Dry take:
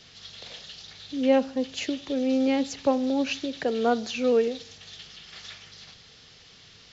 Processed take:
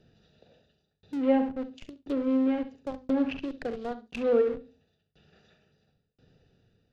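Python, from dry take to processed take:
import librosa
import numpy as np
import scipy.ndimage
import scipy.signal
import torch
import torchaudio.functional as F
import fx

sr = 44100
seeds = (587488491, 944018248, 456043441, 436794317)

p1 = fx.wiener(x, sr, points=41)
p2 = fx.peak_eq(p1, sr, hz=71.0, db=-2.5, octaves=0.44)
p3 = fx.doubler(p2, sr, ms=42.0, db=-13)
p4 = p3 + fx.echo_feedback(p3, sr, ms=68, feedback_pct=25, wet_db=-9.0, dry=0)
p5 = fx.tremolo_shape(p4, sr, shape='saw_down', hz=0.97, depth_pct=100)
p6 = fx.schmitt(p5, sr, flips_db=-35.0)
p7 = p5 + (p6 * librosa.db_to_amplitude(-11.0))
p8 = fx.env_lowpass_down(p7, sr, base_hz=2200.0, full_db=-25.5)
y = fx.hum_notches(p8, sr, base_hz=50, count=5)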